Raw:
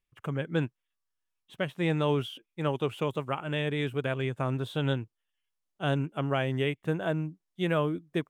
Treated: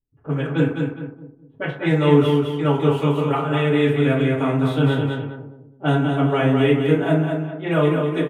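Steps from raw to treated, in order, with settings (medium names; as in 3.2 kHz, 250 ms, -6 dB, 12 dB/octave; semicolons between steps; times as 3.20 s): feedback delay 207 ms, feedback 38%, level -5 dB; reverberation RT60 0.55 s, pre-delay 4 ms, DRR -8.5 dB; level-controlled noise filter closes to 350 Hz, open at -16.5 dBFS; trim -1 dB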